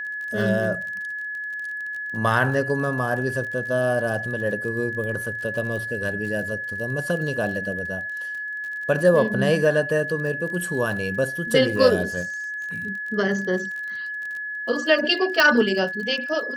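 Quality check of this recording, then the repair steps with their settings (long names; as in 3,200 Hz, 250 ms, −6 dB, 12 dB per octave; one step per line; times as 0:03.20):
surface crackle 33 per second −32 dBFS
whistle 1,700 Hz −28 dBFS
0:15.40: click −4 dBFS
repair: click removal
notch filter 1,700 Hz, Q 30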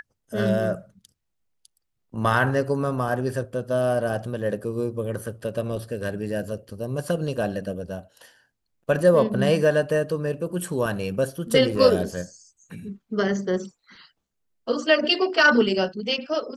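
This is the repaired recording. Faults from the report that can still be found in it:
0:15.40: click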